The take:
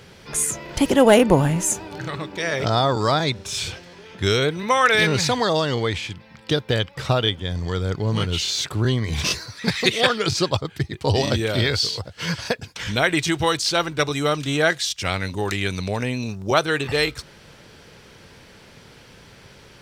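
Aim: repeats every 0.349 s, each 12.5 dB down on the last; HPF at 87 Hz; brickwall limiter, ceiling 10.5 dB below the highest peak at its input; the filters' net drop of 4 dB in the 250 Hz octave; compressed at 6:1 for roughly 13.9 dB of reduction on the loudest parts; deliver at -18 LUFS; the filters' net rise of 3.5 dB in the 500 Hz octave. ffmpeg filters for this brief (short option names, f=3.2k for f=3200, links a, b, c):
-af "highpass=87,equalizer=f=250:t=o:g=-7.5,equalizer=f=500:t=o:g=6,acompressor=threshold=-23dB:ratio=6,alimiter=limit=-19.5dB:level=0:latency=1,aecho=1:1:349|698|1047:0.237|0.0569|0.0137,volume=12dB"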